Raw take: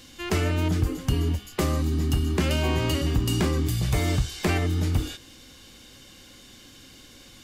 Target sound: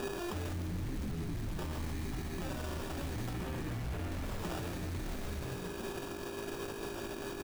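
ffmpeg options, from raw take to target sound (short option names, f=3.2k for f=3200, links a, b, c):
-filter_complex "[0:a]aeval=exprs='val(0)+0.00631*sin(2*PI*2500*n/s)':c=same,flanger=delay=5:depth=7.5:regen=-34:speed=0.86:shape=sinusoidal,acrusher=samples=21:mix=1:aa=0.000001,asettb=1/sr,asplit=3[a][b][c];[a]atrim=end=0.534[d];[b]atrim=start=0.53:end=1.52,asetpts=PTS-STARTPTS,afade=t=in:d=0.004:c=qsin,afade=t=out:st=0.986:d=0.004:c=qsin,equalizer=f=160:t=o:w=2.5:g=13[e];[c]atrim=start=1.516[f];[d][e]acrossfade=d=0.004:c1=hsin:c2=qsin[g];[g][f]acrossfade=d=0.004:c1=qsin:c2=hsin,asettb=1/sr,asplit=3[h][i][j];[h]atrim=end=3.334[k];[i]atrim=start=3.33:end=4.12,asetpts=PTS-STARTPTS,afade=t=in:d=0.004:c=qsin,afade=t=out:st=0.786:d=0.004:c=qsin,lowpass=f=3.3k:w=0.5412,lowpass=f=3.3k:w=1.3066[l];[j]atrim=start=4.116[m];[k][l]acrossfade=d=0.004:c1=hsin:c2=qsin[n];[n][m]acrossfade=d=0.004:c1=qsin:c2=hsin,asplit=8[o][p][q][r][s][t][u][v];[p]adelay=140,afreqshift=-54,volume=-4dB[w];[q]adelay=280,afreqshift=-108,volume=-9.2dB[x];[r]adelay=420,afreqshift=-162,volume=-14.4dB[y];[s]adelay=560,afreqshift=-216,volume=-19.6dB[z];[t]adelay=700,afreqshift=-270,volume=-24.8dB[aa];[u]adelay=840,afreqshift=-324,volume=-30dB[ab];[v]adelay=980,afreqshift=-378,volume=-35.2dB[ac];[o][w][x][y][z][aa][ab][ac]amix=inputs=8:normalize=0,acrusher=bits=3:mode=log:mix=0:aa=0.000001,alimiter=level_in=20dB:limit=-24dB:level=0:latency=1:release=89,volume=-20dB,volume=12dB"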